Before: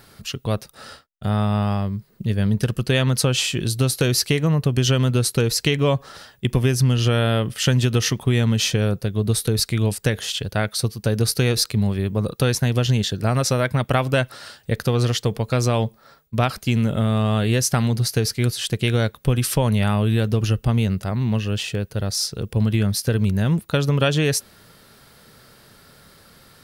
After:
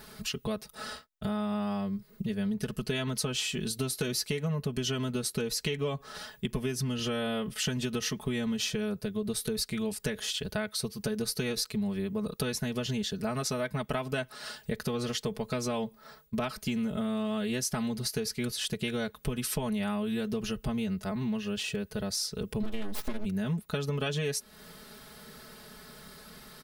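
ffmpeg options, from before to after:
-filter_complex "[0:a]asplit=3[s0][s1][s2];[s0]afade=t=out:st=22.62:d=0.02[s3];[s1]aeval=exprs='abs(val(0))':c=same,afade=t=in:st=22.62:d=0.02,afade=t=out:st=23.24:d=0.02[s4];[s2]afade=t=in:st=23.24:d=0.02[s5];[s3][s4][s5]amix=inputs=3:normalize=0,aecho=1:1:4.7:0.94,acompressor=threshold=0.0316:ratio=3,volume=0.75"

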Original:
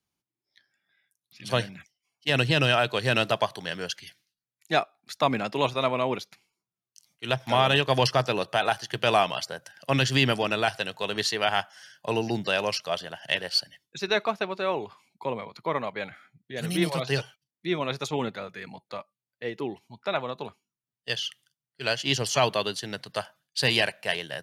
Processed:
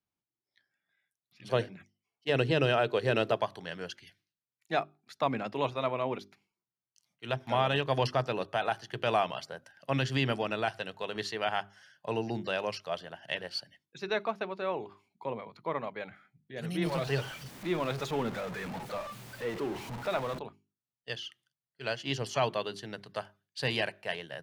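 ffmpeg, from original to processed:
-filter_complex "[0:a]asettb=1/sr,asplit=3[s0][s1][s2];[s0]atrim=end=1.454[s3];[s1]atrim=start=1.45:end=3.37,asetpts=PTS-STARTPTS,afade=t=in:d=0.004:c=qsin,afade=t=out:st=1.916:d=0.004:c=qsin,equalizer=f=420:t=o:w=0.77:g=8.5[s4];[s2]atrim=start=3.366[s5];[s3][s4]acrossfade=d=0.004:c1=hsin:c2=qsin[s6];[s6][s5]acrossfade=d=0.004:c1=qsin:c2=hsin,asettb=1/sr,asplit=3[s7][s8][s9];[s7]atrim=end=16.854[s10];[s8]atrim=start=16.85:end=20.39,asetpts=PTS-STARTPTS,afade=t=in:d=0.004:c=qsin,afade=t=out:st=3.536:d=0.004:c=qsin,aeval=exprs='val(0)+0.5*0.0376*sgn(val(0))':c=same[s11];[s9]atrim=start=20.386[s12];[s10][s11]acrossfade=d=0.004:c1=hsin:c2=qsin[s13];[s13][s12]acrossfade=d=0.004:c1=qsin:c2=hsin,highshelf=f=3500:g=-11,bandreject=f=50:t=h:w=6,bandreject=f=100:t=h:w=6,bandreject=f=150:t=h:w=6,bandreject=f=200:t=h:w=6,bandreject=f=250:t=h:w=6,bandreject=f=300:t=h:w=6,bandreject=f=350:t=h:w=6,bandreject=f=400:t=h:w=6,volume=0.562"

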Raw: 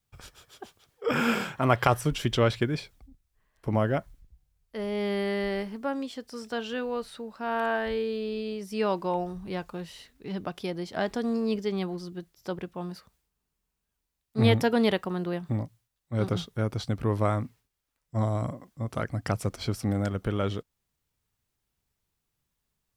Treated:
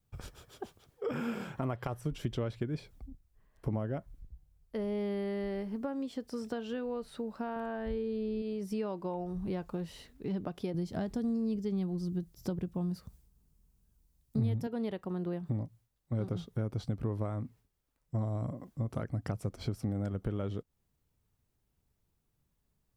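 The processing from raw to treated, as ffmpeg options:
-filter_complex "[0:a]asettb=1/sr,asplit=3[s0][s1][s2];[s0]atrim=end=7.564[s3];[s1]atrim=start=7.56:end=8.42,asetpts=PTS-STARTPTS,afade=t=in:d=0.004:c=qsin,afade=t=out:st=0.856:d=0.004:c=qsin,lowshelf=f=170:g=11[s4];[s2]atrim=start=8.416[s5];[s3][s4]acrossfade=d=0.004:c1=hsin:c2=qsin[s6];[s6][s5]acrossfade=d=0.004:c1=qsin:c2=hsin,asettb=1/sr,asplit=3[s7][s8][s9];[s7]atrim=end=10.744[s10];[s8]atrim=start=10.74:end=14.67,asetpts=PTS-STARTPTS,afade=t=in:d=0.004:c=qsin,afade=t=out:st=3.926:d=0.004:c=qsin,bass=f=250:g=11,treble=f=4000:g=8[s11];[s9]atrim=start=14.666[s12];[s10][s11]acrossfade=d=0.004:c1=hsin:c2=qsin[s13];[s13][s12]acrossfade=d=0.004:c1=qsin:c2=hsin,highshelf=f=7800:g=4,acompressor=threshold=0.0141:ratio=5,tiltshelf=f=860:g=6"

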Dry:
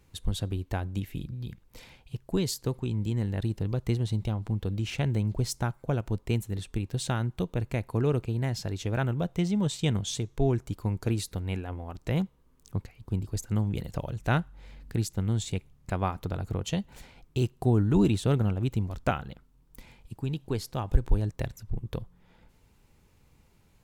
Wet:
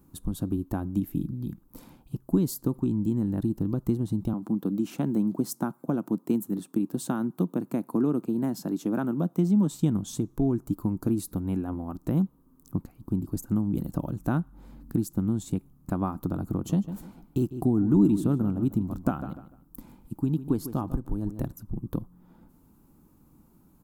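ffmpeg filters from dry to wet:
-filter_complex "[0:a]asettb=1/sr,asplit=3[s0][s1][s2];[s0]atrim=end=4.334[s3];[s1]atrim=start=4.33:end=9.71,asetpts=PTS-STARTPTS,afade=t=in:d=0.004:c=qsin,afade=t=out:st=5.376:d=0.004:c=qsin,highpass=f=170:w=0.5412,highpass=f=170:w=1.3066[s4];[s2]atrim=start=9.706[s5];[s3][s4]acrossfade=d=0.004:c1=hsin:c2=qsin[s6];[s6][s5]acrossfade=d=0.004:c1=qsin:c2=hsin,asettb=1/sr,asplit=3[s7][s8][s9];[s7]atrim=end=16.504[s10];[s8]atrim=start=16.5:end=21.53,asetpts=PTS-STARTPTS,afade=t=in:d=0.004:c=qsin,afade=t=out:st=5.026:d=0.004:c=qsin,asplit=2[s11][s12];[s12]adelay=149,lowpass=f=3900:p=1,volume=0.2,asplit=2[s13][s14];[s14]adelay=149,lowpass=f=3900:p=1,volume=0.28,asplit=2[s15][s16];[s16]adelay=149,lowpass=f=3900:p=1,volume=0.28[s17];[s11][s13][s15][s17]amix=inputs=4:normalize=0,atrim=end_sample=221823[s18];[s9]atrim=start=21.526[s19];[s10][s18]acrossfade=d=0.004:c1=hsin:c2=qsin[s20];[s20][s19]acrossfade=d=0.004:c1=qsin:c2=hsin,acompressor=threshold=0.0398:ratio=2.5,firequalizer=gain_entry='entry(110,0);entry(160,9);entry(300,15);entry(430,0);entry(660,2);entry(1200,5);entry(2000,-12);entry(13000,11)':delay=0.05:min_phase=1,volume=0.841"

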